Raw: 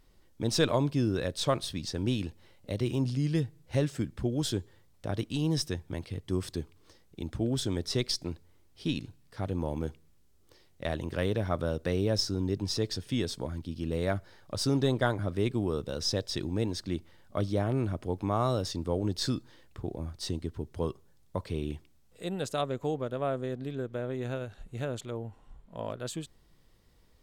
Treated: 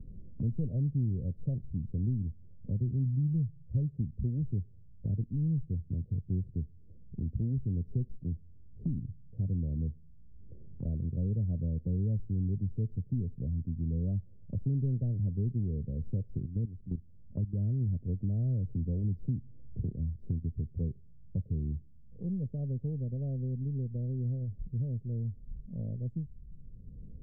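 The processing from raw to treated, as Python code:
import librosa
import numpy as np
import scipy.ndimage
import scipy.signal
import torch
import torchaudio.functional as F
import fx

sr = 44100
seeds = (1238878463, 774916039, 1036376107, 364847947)

y = fx.level_steps(x, sr, step_db=15, at=(16.45, 17.81))
y = fx.band_squash(y, sr, depth_pct=40, at=(18.68, 19.92))
y = scipy.signal.sosfilt(scipy.signal.cheby2(4, 60, 1000.0, 'lowpass', fs=sr, output='sos'), y)
y = y + 0.73 * np.pad(y, (int(1.6 * sr / 1000.0), 0))[:len(y)]
y = fx.band_squash(y, sr, depth_pct=70)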